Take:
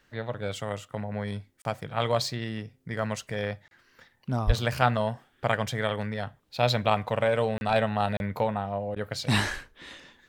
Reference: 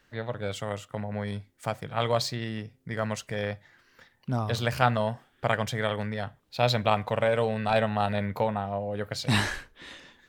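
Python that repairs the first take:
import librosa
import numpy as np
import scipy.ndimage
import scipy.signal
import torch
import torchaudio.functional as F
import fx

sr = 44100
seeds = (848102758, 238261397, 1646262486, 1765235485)

y = fx.fix_deplosive(x, sr, at_s=(4.46,))
y = fx.fix_interpolate(y, sr, at_s=(1.62, 3.68, 7.58, 8.17), length_ms=31.0)
y = fx.fix_interpolate(y, sr, at_s=(8.95,), length_ms=11.0)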